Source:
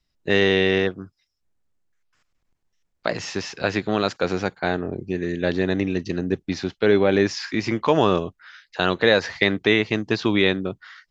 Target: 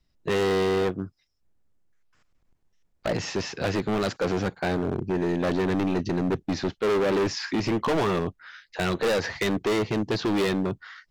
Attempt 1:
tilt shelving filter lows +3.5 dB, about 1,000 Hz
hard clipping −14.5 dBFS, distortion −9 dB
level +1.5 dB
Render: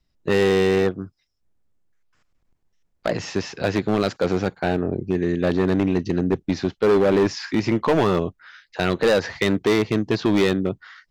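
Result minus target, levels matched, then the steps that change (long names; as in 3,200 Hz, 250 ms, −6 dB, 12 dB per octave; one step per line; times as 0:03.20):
hard clipping: distortion −6 dB
change: hard clipping −22.5 dBFS, distortion −4 dB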